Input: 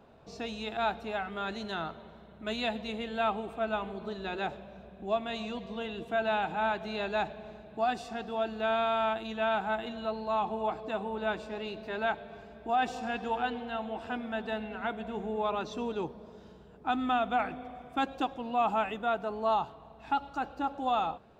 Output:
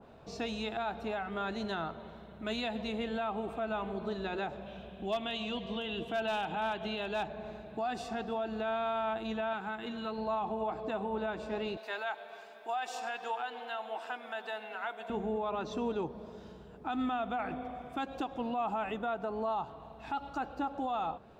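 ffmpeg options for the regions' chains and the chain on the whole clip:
-filter_complex "[0:a]asettb=1/sr,asplit=3[a][b][c];[a]atrim=end=4.664[d];[b]atrim=start=4.66:end=7.26,asetpts=PTS-STARTPTS,afade=t=in:d=0.004:c=qsin,afade=t=out:st=2.596:d=0.004:c=qsin,equalizer=f=3.1k:w=3.4:g=13.5,asoftclip=type=hard:threshold=-22dB[e];[c]atrim=start=7.256[f];[d][e]acrossfade=d=0.004:c1=hsin:c2=qsin[g];[g][f]acrossfade=d=0.004:c1=qsin:c2=hsin,asettb=1/sr,asplit=3[h][i][j];[h]atrim=end=9.534[k];[i]atrim=start=9.53:end=10.18,asetpts=PTS-STARTPTS,afade=t=in:d=0.004:c=qsin,afade=t=out:st=0.646:d=0.004:c=qsin,highpass=f=180:p=1,equalizer=f=680:t=o:w=0.71:g=-10.5,acompressor=mode=upward:threshold=-37dB:ratio=2.5:attack=3.2:release=140:knee=2.83:detection=peak[l];[j]atrim=start=10.176[m];[k][l]acrossfade=d=0.004:c1=hsin:c2=qsin[n];[n][m]acrossfade=d=0.004:c1=qsin:c2=hsin,asettb=1/sr,asplit=3[o][p][q];[o]atrim=end=11.774[r];[p]atrim=start=11.77:end=15.1,asetpts=PTS-STARTPTS,afade=t=in:d=0.004:c=qsin,afade=t=out:st=3.326:d=0.004:c=qsin,highpass=680,highshelf=f=6.2k:g=8[s];[q]atrim=start=15.096[t];[r][s]acrossfade=d=0.004:c1=hsin:c2=qsin[u];[u][t]acrossfade=d=0.004:c1=qsin:c2=hsin,alimiter=level_in=4.5dB:limit=-24dB:level=0:latency=1:release=118,volume=-4.5dB,adynamicequalizer=threshold=0.00355:dfrequency=1800:dqfactor=0.7:tfrequency=1800:tqfactor=0.7:attack=5:release=100:ratio=0.375:range=2.5:mode=cutabove:tftype=highshelf,volume=2.5dB"

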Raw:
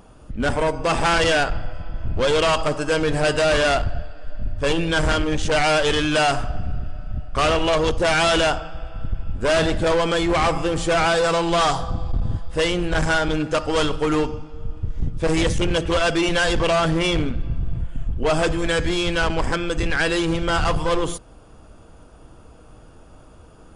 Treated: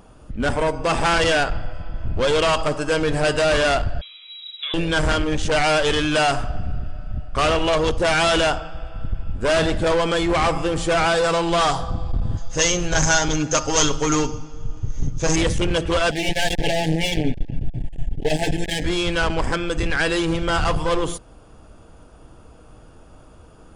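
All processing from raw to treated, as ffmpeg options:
-filter_complex "[0:a]asettb=1/sr,asplit=3[a][b][c];[a]atrim=end=4.014[d];[b]atrim=start=4.01:end=4.74,asetpts=PTS-STARTPTS,afade=t=in:d=0.004:c=qsin,afade=t=out:st=0.726:d=0.004:c=qsin,acrossover=split=260 2100:gain=0.158 1 0.2[e][f][g];[e][f][g]amix=inputs=3:normalize=0,acompressor=threshold=-24dB:ratio=5:attack=3.2:release=140:knee=1:detection=peak,lowpass=f=3.3k:t=q:w=0.5098,lowpass=f=3.3k:t=q:w=0.6013,lowpass=f=3.3k:t=q:w=0.9,lowpass=f=3.3k:t=q:w=2.563,afreqshift=-3900[h];[c]atrim=start=4.736[i];[d][h]acrossfade=d=0.004:c1=hsin:c2=qsin[j];[j][i]acrossfade=d=0.004:c1=qsin:c2=hsin,asettb=1/sr,asplit=3[k][l][m];[k]atrim=end=12.374[n];[l]atrim=start=12.37:end=15.36,asetpts=PTS-STARTPTS,afade=t=in:d=0.004:c=qsin,afade=t=out:st=2.986:d=0.004:c=qsin,lowpass=f=6.4k:t=q:w=15,aecho=1:1:7.4:0.42,atrim=end_sample=131859[o];[m]atrim=start=15.356[p];[n][o]acrossfade=d=0.004:c1=hsin:c2=qsin[q];[q][p]acrossfade=d=0.004:c1=qsin:c2=hsin,asettb=1/sr,asplit=3[r][s][t];[r]atrim=end=16.114[u];[s]atrim=start=16.11:end=18.84,asetpts=PTS-STARTPTS,afade=t=in:d=0.004:c=qsin,afade=t=out:st=2.726:d=0.004:c=qsin,aecho=1:1:7:0.89,atrim=end_sample=120393,aeval=exprs='clip(val(0),-1,0.0299)':c=same,asuperstop=centerf=1200:order=12:qfactor=1.6[v];[t]atrim=start=18.836[w];[u][v]acrossfade=d=0.004:c1=hsin:c2=qsin[x];[x][w]acrossfade=d=0.004:c1=qsin:c2=hsin"

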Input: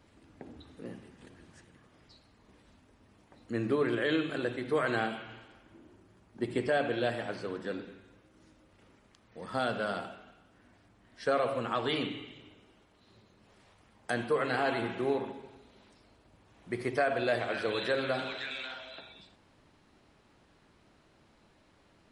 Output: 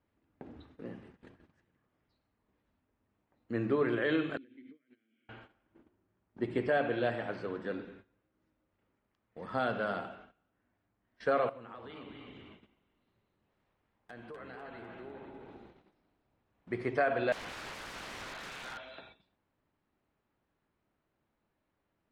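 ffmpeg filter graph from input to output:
-filter_complex "[0:a]asettb=1/sr,asplit=3[a][b][c];[a]atrim=end=4.374[d];[b]atrim=start=4.37:end=5.29,asetpts=PTS-STARTPTS,afade=t=in:d=0.004:c=qsin,afade=t=out:st=0.916:d=0.004:c=qsin,acompressor=threshold=-40dB:ratio=12:attack=3.2:release=140:knee=1:detection=peak,asplit=3[e][f][g];[e]bandpass=f=270:t=q:w=8,volume=0dB[h];[f]bandpass=f=2.29k:t=q:w=8,volume=-6dB[i];[g]bandpass=f=3.01k:t=q:w=8,volume=-9dB[j];[h][i][j]amix=inputs=3:normalize=0[k];[c]atrim=start=5.286[l];[d][k]acrossfade=d=0.004:c1=hsin:c2=qsin[m];[m][l]acrossfade=d=0.004:c1=qsin:c2=hsin,asettb=1/sr,asplit=3[n][o][p];[n]atrim=end=11.494[q];[o]atrim=start=11.49:end=16.71,asetpts=PTS-STARTPTS,afade=t=in:d=0.004:c=qsin,afade=t=out:st=5.216:d=0.004:c=qsin,acompressor=threshold=-47dB:ratio=4:attack=3.2:release=140:knee=1:detection=peak,aeval=exprs='(mod(53.1*val(0)+1,2)-1)/53.1':c=same,asplit=8[r][s][t][u][v][w][x][y];[s]adelay=251,afreqshift=-34,volume=-6.5dB[z];[t]adelay=502,afreqshift=-68,volume=-12dB[aa];[u]adelay=753,afreqshift=-102,volume=-17.5dB[ab];[v]adelay=1004,afreqshift=-136,volume=-23dB[ac];[w]adelay=1255,afreqshift=-170,volume=-28.6dB[ad];[x]adelay=1506,afreqshift=-204,volume=-34.1dB[ae];[y]adelay=1757,afreqshift=-238,volume=-39.6dB[af];[r][z][aa][ab][ac][ad][ae][af]amix=inputs=8:normalize=0,atrim=end_sample=230202[ag];[p]atrim=start=16.706[ah];[q][ag]acrossfade=d=0.004:c1=hsin:c2=qsin[ai];[ai][ah]acrossfade=d=0.004:c1=qsin:c2=hsin,asettb=1/sr,asplit=3[aj][ak][al];[aj]atrim=end=17.324[am];[ak]atrim=start=17.32:end=18.78,asetpts=PTS-STARTPTS,afade=t=in:d=0.004:c=qsin,afade=t=out:st=1.456:d=0.004:c=qsin,highpass=f=970:t=q:w=1.8,aeval=exprs='(mod(53.1*val(0)+1,2)-1)/53.1':c=same[an];[al]atrim=start=18.776[ao];[am][an]acrossfade=d=0.004:c1=hsin:c2=qsin[ap];[ap][ao]acrossfade=d=0.004:c1=qsin:c2=hsin,lowpass=1.9k,aemphasis=mode=production:type=75fm,agate=range=-16dB:threshold=-54dB:ratio=16:detection=peak"

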